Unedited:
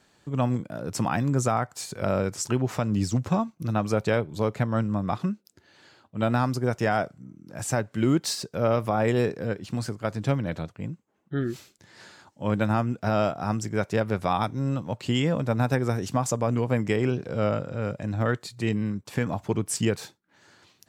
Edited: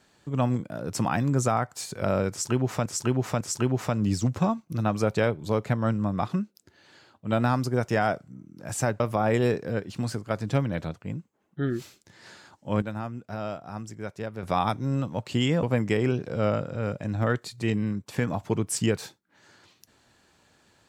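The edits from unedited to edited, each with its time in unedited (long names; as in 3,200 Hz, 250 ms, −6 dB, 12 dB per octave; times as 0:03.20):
0:02.31–0:02.86: repeat, 3 plays
0:07.90–0:08.74: remove
0:12.56–0:14.17: clip gain −9.5 dB
0:15.37–0:16.62: remove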